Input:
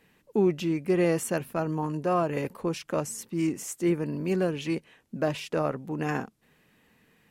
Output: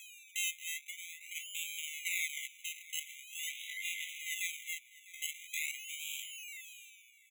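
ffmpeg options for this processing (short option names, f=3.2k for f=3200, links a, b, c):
-filter_complex "[0:a]aresample=22050,aresample=44100,acrossover=split=290|910[a][b][c];[c]aeval=exprs='(mod(31.6*val(0)+1,2)-1)/31.6':c=same[d];[a][b][d]amix=inputs=3:normalize=0,aeval=exprs='val(0)+0.0178*sin(2*PI*1100*n/s)':c=same,acrusher=samples=30:mix=1:aa=0.000001:lfo=1:lforange=18:lforate=0.45,equalizer=f=125:t=o:w=1:g=-4,equalizer=f=250:t=o:w=1:g=9,equalizer=f=500:t=o:w=1:g=8,equalizer=f=1k:t=o:w=1:g=10,equalizer=f=4k:t=o:w=1:g=-7,equalizer=f=8k:t=o:w=1:g=3,asettb=1/sr,asplit=3[e][f][g];[e]atrim=end=3.494[h];[f]atrim=start=3.49:end=4.2,asetpts=PTS-STARTPTS,afade=t=in:d=0.004:c=qsin,afade=t=out:st=0.706:d=0.004:c=qsin,aeval=exprs='max(val(0),0)':c=same[i];[g]atrim=start=4.196[j];[h][i]acrossfade=d=0.004:c1=hsin:c2=qsin[k];[k][j]acrossfade=d=0.004:c1=qsin:c2=hsin,asplit=2[l][m];[m]aecho=0:1:651:0.106[n];[l][n]amix=inputs=2:normalize=0,asplit=3[o][p][q];[o]afade=t=out:st=0.8:d=0.02[r];[p]acompressor=threshold=-23dB:ratio=8,afade=t=in:st=0.8:d=0.02,afade=t=out:st=1.35:d=0.02[s];[q]afade=t=in:st=1.35:d=0.02[t];[r][s][t]amix=inputs=3:normalize=0,afftfilt=real='re*eq(mod(floor(b*sr/1024/2000),2),1)':imag='im*eq(mod(floor(b*sr/1024/2000),2),1)':win_size=1024:overlap=0.75,volume=1dB"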